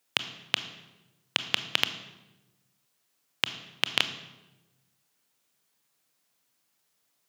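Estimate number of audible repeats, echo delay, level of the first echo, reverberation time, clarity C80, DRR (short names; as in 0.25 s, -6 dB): none, none, none, 1.1 s, 13.5 dB, 10.0 dB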